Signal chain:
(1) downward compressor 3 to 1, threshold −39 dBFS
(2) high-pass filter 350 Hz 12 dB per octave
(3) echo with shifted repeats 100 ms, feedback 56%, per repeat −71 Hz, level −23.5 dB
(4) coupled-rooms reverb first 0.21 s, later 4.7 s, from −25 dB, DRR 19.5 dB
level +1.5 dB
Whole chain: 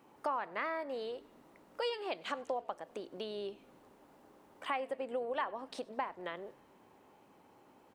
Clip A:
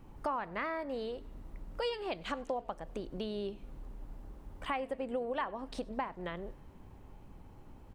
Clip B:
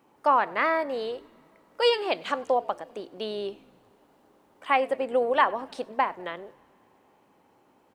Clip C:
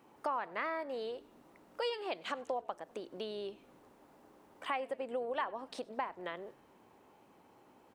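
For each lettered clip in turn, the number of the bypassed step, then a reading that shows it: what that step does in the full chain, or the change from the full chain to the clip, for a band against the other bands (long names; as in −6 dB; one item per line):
2, 125 Hz band +13.5 dB
1, average gain reduction 6.0 dB
4, echo-to-direct ratio −17.5 dB to −22.0 dB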